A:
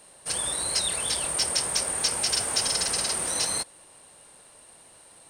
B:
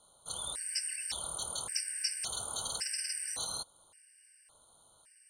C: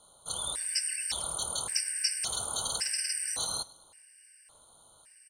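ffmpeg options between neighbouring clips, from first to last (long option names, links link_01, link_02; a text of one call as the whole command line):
ffmpeg -i in.wav -af "equalizer=frequency=320:width=0.6:gain=-8,afftfilt=real='re*gt(sin(2*PI*0.89*pts/sr)*(1-2*mod(floor(b*sr/1024/1500),2)),0)':imag='im*gt(sin(2*PI*0.89*pts/sr)*(1-2*mod(floor(b*sr/1024/1500),2)),0)':win_size=1024:overlap=0.75,volume=-7dB" out.wav
ffmpeg -i in.wav -af "aecho=1:1:103|206|309:0.0841|0.037|0.0163,volume=4.5dB" out.wav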